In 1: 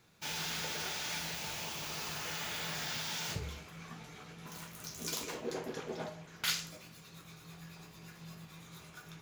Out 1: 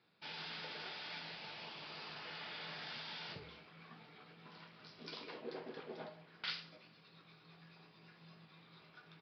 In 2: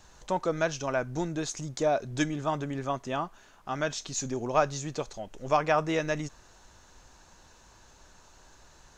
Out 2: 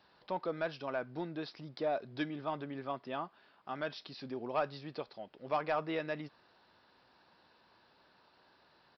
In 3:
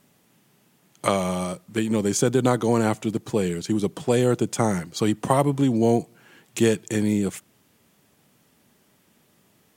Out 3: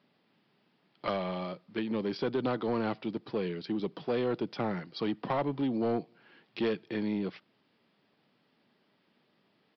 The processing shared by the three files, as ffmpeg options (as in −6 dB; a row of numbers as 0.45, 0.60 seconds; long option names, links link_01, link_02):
-af "highpass=180,aresample=11025,asoftclip=type=tanh:threshold=-15.5dB,aresample=44100,volume=-7dB"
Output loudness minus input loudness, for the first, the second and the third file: −9.0, −8.5, −10.0 LU